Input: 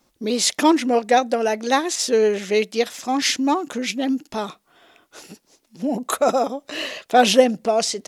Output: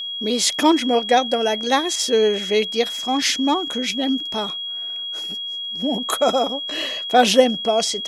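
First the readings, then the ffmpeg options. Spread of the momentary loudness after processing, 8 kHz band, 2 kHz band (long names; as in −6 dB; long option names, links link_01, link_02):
9 LU, 0.0 dB, 0.0 dB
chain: -af "aeval=exprs='val(0)+0.0501*sin(2*PI*3300*n/s)':channel_layout=same"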